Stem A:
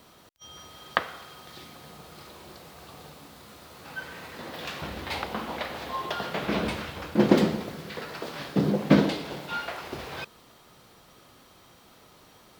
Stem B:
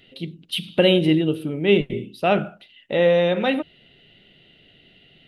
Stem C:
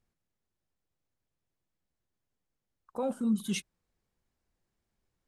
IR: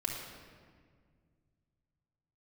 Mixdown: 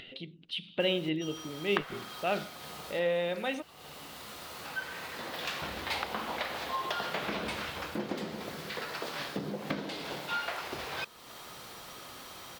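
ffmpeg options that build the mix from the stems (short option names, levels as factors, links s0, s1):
-filter_complex "[0:a]acompressor=threshold=0.0355:ratio=6,adelay=800,volume=1.19[s0];[1:a]lowpass=4500,volume=0.355[s1];[2:a]highpass=580,volume=0.158,asplit=2[s2][s3];[s3]apad=whole_len=590831[s4];[s0][s4]sidechaincompress=threshold=0.00141:ratio=6:attack=6.3:release=1260[s5];[s5][s1][s2]amix=inputs=3:normalize=0,lowshelf=f=460:g=-8.5,acompressor=mode=upward:threshold=0.0141:ratio=2.5"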